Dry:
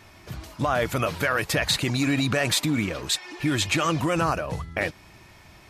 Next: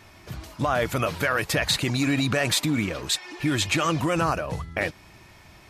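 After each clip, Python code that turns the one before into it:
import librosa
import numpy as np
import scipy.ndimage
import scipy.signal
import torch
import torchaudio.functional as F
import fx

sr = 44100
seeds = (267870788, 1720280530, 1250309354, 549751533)

y = x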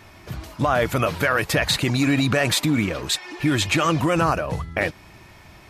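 y = fx.peak_eq(x, sr, hz=6800.0, db=-3.0, octaves=2.2)
y = y * 10.0 ** (4.0 / 20.0)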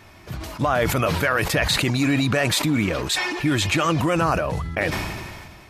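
y = fx.sustainer(x, sr, db_per_s=31.0)
y = y * 10.0 ** (-1.0 / 20.0)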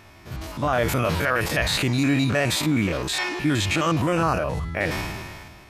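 y = fx.spec_steps(x, sr, hold_ms=50)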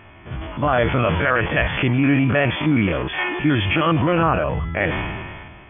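y = fx.brickwall_lowpass(x, sr, high_hz=3500.0)
y = y * 10.0 ** (4.0 / 20.0)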